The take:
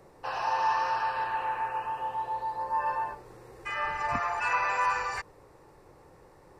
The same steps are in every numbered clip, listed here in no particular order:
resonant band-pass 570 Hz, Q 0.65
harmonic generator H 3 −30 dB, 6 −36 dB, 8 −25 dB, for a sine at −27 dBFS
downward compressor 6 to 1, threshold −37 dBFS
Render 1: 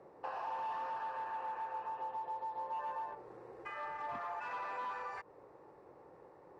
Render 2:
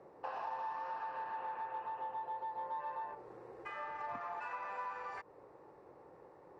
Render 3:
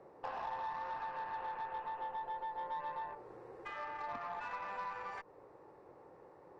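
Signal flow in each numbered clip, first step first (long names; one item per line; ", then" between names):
harmonic generator, then downward compressor, then resonant band-pass
downward compressor, then harmonic generator, then resonant band-pass
downward compressor, then resonant band-pass, then harmonic generator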